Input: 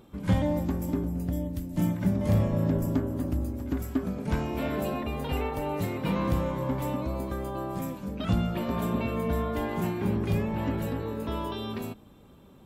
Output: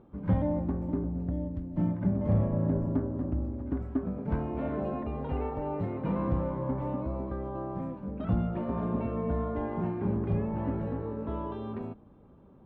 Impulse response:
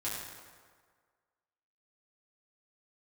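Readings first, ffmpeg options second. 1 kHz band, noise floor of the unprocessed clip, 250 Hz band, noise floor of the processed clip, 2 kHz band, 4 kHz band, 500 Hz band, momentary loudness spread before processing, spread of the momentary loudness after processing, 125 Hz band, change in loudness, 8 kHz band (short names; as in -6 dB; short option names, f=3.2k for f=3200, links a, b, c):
-3.5 dB, -53 dBFS, -2.0 dB, -55 dBFS, -10.5 dB, under -15 dB, -2.0 dB, 7 LU, 8 LU, -2.0 dB, -2.0 dB, under -30 dB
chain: -af "lowpass=1.2k,volume=-2dB"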